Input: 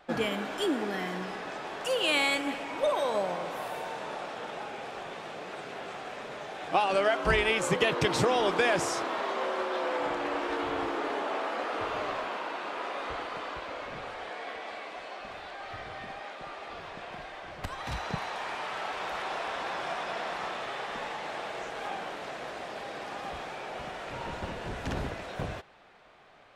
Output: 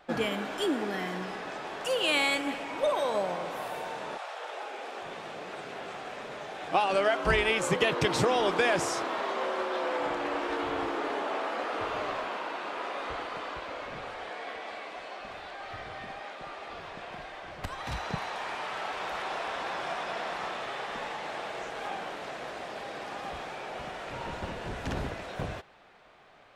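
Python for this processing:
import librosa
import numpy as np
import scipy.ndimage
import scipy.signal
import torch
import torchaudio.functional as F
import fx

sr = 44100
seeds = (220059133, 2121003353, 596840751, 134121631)

y = fx.highpass(x, sr, hz=fx.line((4.17, 670.0), (5.01, 220.0)), slope=24, at=(4.17, 5.01), fade=0.02)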